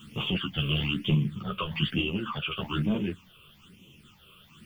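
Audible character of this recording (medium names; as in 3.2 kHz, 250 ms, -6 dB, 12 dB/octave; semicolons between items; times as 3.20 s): a quantiser's noise floor 10-bit, dither none; phasing stages 8, 1.1 Hz, lowest notch 240–1500 Hz; random-step tremolo; a shimmering, thickened sound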